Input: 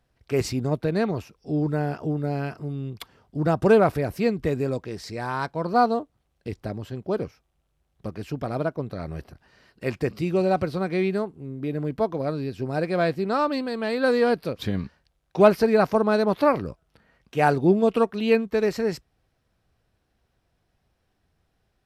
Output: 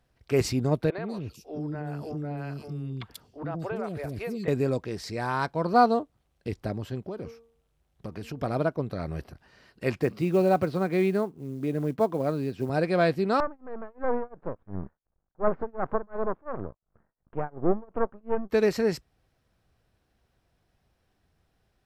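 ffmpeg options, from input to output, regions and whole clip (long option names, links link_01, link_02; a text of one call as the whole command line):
ffmpeg -i in.wav -filter_complex "[0:a]asettb=1/sr,asplit=3[link_01][link_02][link_03];[link_01]atrim=end=0.904[link_04];[link_02]atrim=start=0.9:end=4.48,asetpts=PTS-STARTPTS,afade=type=in:duration=0.004:curve=qsin,afade=type=out:start_time=3.576:duration=0.004:curve=qsin,acrossover=split=430|3500[link_05][link_06][link_07];[link_05]adelay=80[link_08];[link_07]adelay=140[link_09];[link_08][link_06][link_09]amix=inputs=3:normalize=0,atrim=end_sample=157878,acompressor=threshold=-31dB:ratio=4:attack=3.2:release=140:knee=1:detection=peak[link_10];[link_03]atrim=start=4.476[link_11];[link_04][link_10]acrossfade=duration=0.004:curve1=hsin:curve2=qsin[link_12];[link_12][link_11]acrossfade=duration=0.004:curve1=qsin:curve2=hsin,asettb=1/sr,asplit=3[link_13][link_14][link_15];[link_13]atrim=end=7.034[link_16];[link_14]atrim=start=7.03:end=8.41,asetpts=PTS-STARTPTS,afade=type=in:duration=0.004:curve=qsin,afade=type=out:start_time=1.376:duration=0.004:curve=qsin,bandreject=frequency=230:width_type=h:width=4,bandreject=frequency=460:width_type=h:width=4,bandreject=frequency=690:width_type=h:width=4,bandreject=frequency=920:width_type=h:width=4,bandreject=frequency=1150:width_type=h:width=4,acompressor=threshold=-31dB:ratio=16:attack=3.2:release=140:knee=1:detection=peak[link_17];[link_15]atrim=start=8.406[link_18];[link_16][link_17]acrossfade=duration=0.004:curve1=hsin:curve2=qsin[link_19];[link_19][link_18]acrossfade=duration=0.004:curve1=qsin:curve2=hsin,asettb=1/sr,asplit=3[link_20][link_21][link_22];[link_20]atrim=end=10.014[link_23];[link_21]atrim=start=10.01:end=12.7,asetpts=PTS-STARTPTS,afade=type=in:duration=0.004:curve=qsin,afade=type=out:start_time=2.686:duration=0.004:curve=qsin,highshelf=frequency=3700:gain=-9,acrusher=bits=8:mode=log:mix=0:aa=0.000001,highpass=110[link_24];[link_22]atrim=start=12.696[link_25];[link_23][link_24]acrossfade=duration=0.004:curve1=hsin:curve2=qsin[link_26];[link_26][link_25]acrossfade=duration=0.004:curve1=qsin:curve2=hsin,asettb=1/sr,asplit=3[link_27][link_28][link_29];[link_27]atrim=end=13.404[link_30];[link_28]atrim=start=13.4:end=18.5,asetpts=PTS-STARTPTS,afade=type=in:duration=0.004:curve=qsin,afade=type=out:start_time=5.096:duration=0.004:curve=qsin,aeval=exprs='max(val(0),0)':channel_layout=same,tremolo=f=2.8:d=0.98,lowpass=frequency=1400:width=0.5412,lowpass=frequency=1400:width=1.3066[link_31];[link_29]atrim=start=18.496[link_32];[link_30][link_31]acrossfade=duration=0.004:curve1=hsin:curve2=qsin[link_33];[link_33][link_32]acrossfade=duration=0.004:curve1=qsin:curve2=hsin" out.wav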